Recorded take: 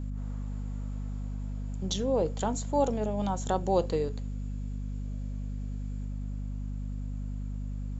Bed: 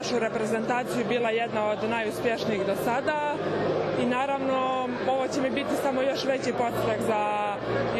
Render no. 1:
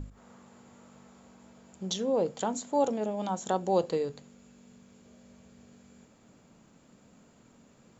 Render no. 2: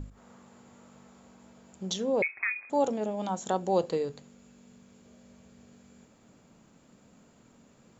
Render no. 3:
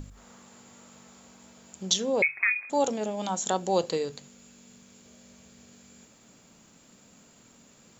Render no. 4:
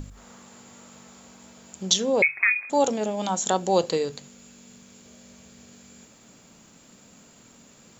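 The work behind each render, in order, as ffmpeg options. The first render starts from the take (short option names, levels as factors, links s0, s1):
-af "bandreject=f=50:t=h:w=6,bandreject=f=100:t=h:w=6,bandreject=f=150:t=h:w=6,bandreject=f=200:t=h:w=6,bandreject=f=250:t=h:w=6"
-filter_complex "[0:a]asettb=1/sr,asplit=3[s0][s1][s2];[s0]atrim=end=2.224[s3];[s1]atrim=start=2.22:end=2.7,asetpts=PTS-STARTPTS,afade=t=in:d=0.004:c=qsin,afade=t=out:st=0.476:d=0.004:c=qsin,lowpass=f=2300:t=q:w=0.5098,lowpass=f=2300:t=q:w=0.6013,lowpass=f=2300:t=q:w=0.9,lowpass=f=2300:t=q:w=2.563,afreqshift=-2700[s4];[s2]atrim=start=2.696[s5];[s3][s4]acrossfade=d=0.004:c1=hsin:c2=qsin[s6];[s6][s5]acrossfade=d=0.004:c1=qsin:c2=hsin"
-af "highshelf=f=2200:g=12,bandreject=f=46.16:t=h:w=4,bandreject=f=92.32:t=h:w=4,bandreject=f=138.48:t=h:w=4"
-af "volume=1.58"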